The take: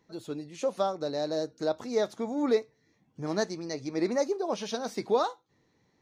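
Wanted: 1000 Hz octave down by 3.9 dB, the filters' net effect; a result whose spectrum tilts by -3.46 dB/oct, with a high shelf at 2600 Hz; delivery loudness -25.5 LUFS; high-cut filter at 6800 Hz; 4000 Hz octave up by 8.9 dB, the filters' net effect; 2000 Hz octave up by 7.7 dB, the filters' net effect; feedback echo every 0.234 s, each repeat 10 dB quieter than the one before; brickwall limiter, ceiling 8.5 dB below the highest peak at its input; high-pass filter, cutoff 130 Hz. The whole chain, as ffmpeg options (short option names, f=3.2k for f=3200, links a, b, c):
-af "highpass=130,lowpass=6.8k,equalizer=f=1k:t=o:g=-8.5,equalizer=f=2k:t=o:g=9,highshelf=f=2.6k:g=3.5,equalizer=f=4k:t=o:g=6,alimiter=limit=-20dB:level=0:latency=1,aecho=1:1:234|468|702|936:0.316|0.101|0.0324|0.0104,volume=7dB"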